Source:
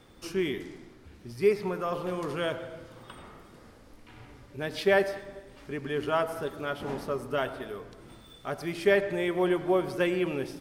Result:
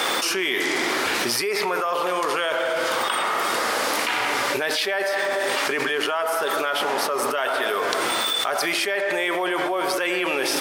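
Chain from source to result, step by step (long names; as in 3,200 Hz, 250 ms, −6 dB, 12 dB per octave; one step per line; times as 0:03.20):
high-pass filter 730 Hz 12 dB per octave
envelope flattener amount 100%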